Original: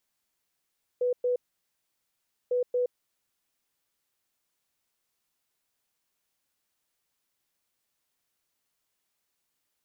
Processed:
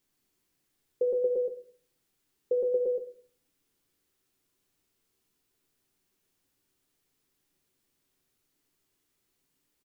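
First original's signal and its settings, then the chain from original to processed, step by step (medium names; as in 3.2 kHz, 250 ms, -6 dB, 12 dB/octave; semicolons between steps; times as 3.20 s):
beep pattern sine 494 Hz, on 0.12 s, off 0.11 s, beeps 2, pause 1.15 s, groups 2, -23 dBFS
resonant low shelf 490 Hz +7 dB, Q 1.5; delay 122 ms -5.5 dB; simulated room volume 44 m³, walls mixed, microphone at 0.31 m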